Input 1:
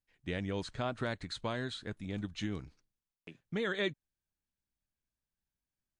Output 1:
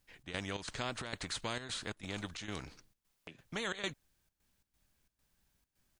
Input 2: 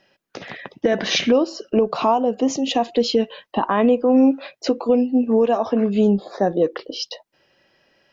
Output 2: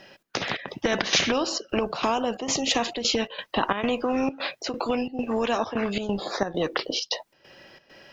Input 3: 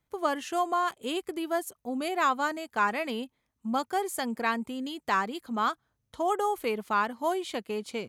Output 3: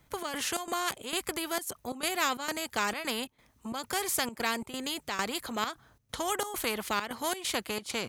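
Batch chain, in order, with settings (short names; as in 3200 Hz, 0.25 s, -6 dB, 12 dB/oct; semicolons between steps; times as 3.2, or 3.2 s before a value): step gate "xx.xx.xxx.xx" 133 bpm -12 dB; spectral compressor 2:1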